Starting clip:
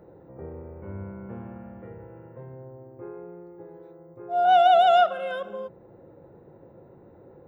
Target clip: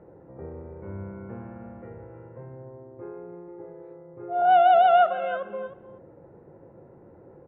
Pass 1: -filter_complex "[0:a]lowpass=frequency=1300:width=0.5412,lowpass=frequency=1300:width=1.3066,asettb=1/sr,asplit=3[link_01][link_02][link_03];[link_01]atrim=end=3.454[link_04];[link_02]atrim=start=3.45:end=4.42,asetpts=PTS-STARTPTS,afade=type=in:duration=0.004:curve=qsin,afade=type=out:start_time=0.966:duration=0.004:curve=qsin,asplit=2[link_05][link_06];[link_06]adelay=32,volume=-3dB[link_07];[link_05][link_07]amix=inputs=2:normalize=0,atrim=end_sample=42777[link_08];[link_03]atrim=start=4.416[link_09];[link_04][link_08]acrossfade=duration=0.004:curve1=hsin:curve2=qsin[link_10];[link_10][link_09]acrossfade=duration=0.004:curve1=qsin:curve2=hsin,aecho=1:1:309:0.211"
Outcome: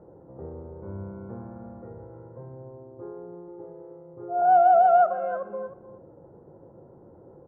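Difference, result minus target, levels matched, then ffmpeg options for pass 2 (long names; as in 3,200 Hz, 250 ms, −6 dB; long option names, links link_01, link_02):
2,000 Hz band −5.5 dB
-filter_complex "[0:a]lowpass=frequency=2600:width=0.5412,lowpass=frequency=2600:width=1.3066,asettb=1/sr,asplit=3[link_01][link_02][link_03];[link_01]atrim=end=3.454[link_04];[link_02]atrim=start=3.45:end=4.42,asetpts=PTS-STARTPTS,afade=type=in:duration=0.004:curve=qsin,afade=type=out:start_time=0.966:duration=0.004:curve=qsin,asplit=2[link_05][link_06];[link_06]adelay=32,volume=-3dB[link_07];[link_05][link_07]amix=inputs=2:normalize=0,atrim=end_sample=42777[link_08];[link_03]atrim=start=4.416[link_09];[link_04][link_08]acrossfade=duration=0.004:curve1=hsin:curve2=qsin[link_10];[link_10][link_09]acrossfade=duration=0.004:curve1=qsin:curve2=hsin,aecho=1:1:309:0.211"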